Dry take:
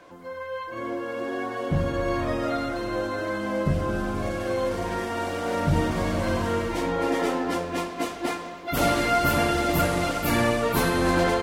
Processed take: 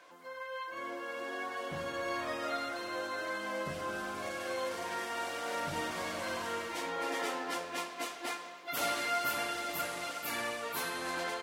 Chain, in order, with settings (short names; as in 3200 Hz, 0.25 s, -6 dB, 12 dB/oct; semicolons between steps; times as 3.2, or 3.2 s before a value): HPF 1300 Hz 6 dB/oct; vocal rider within 3 dB 2 s; gain -5 dB